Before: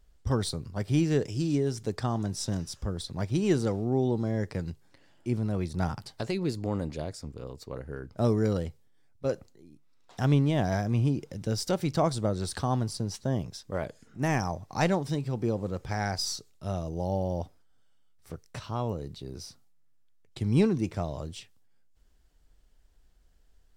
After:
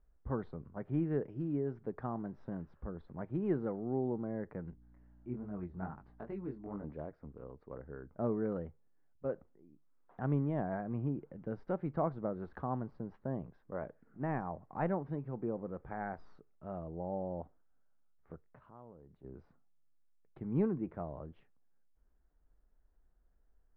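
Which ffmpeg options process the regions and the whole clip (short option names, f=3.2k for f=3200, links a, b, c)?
-filter_complex "[0:a]asettb=1/sr,asplit=3[a][b][c];[a]atrim=end=4.704[d];[b]atrim=start=4.7:end=6.84,asetpts=PTS-STARTPTS,afade=t=in:d=0.004:c=qsin,afade=t=out:st=2.136:d=0.004:c=qsin,flanger=delay=19.5:depth=4.3:speed=2.4,bandreject=f=520:w=8.5,aeval=exprs='val(0)+0.00282*(sin(2*PI*60*n/s)+sin(2*PI*2*60*n/s)/2+sin(2*PI*3*60*n/s)/3+sin(2*PI*4*60*n/s)/4+sin(2*PI*5*60*n/s)/5)':c=same[e];[c]atrim=start=6.836[f];[d][e]acrossfade=d=0.004:c1=hsin:c2=qsin[g];[g][f]acrossfade=d=0.004:c1=qsin:c2=hsin,asettb=1/sr,asplit=3[h][i][j];[h]atrim=end=18.414[k];[i]atrim=start=18.41:end=19.24,asetpts=PTS-STARTPTS,afade=t=in:d=0.004:c=qsin,afade=t=out:st=0.826:d=0.004:c=qsin,acompressor=threshold=-53dB:ratio=2:attack=3.2:release=140:knee=1:detection=peak,acrusher=bits=8:mode=log:mix=0:aa=0.000001[l];[j]atrim=start=19.236[m];[k][l]acrossfade=d=0.004:c1=hsin:c2=qsin[n];[n][m]acrossfade=d=0.004:c1=qsin:c2=hsin,lowpass=f=1.6k:w=0.5412,lowpass=f=1.6k:w=1.3066,equalizer=f=100:t=o:w=0.4:g=-15,volume=-7.5dB"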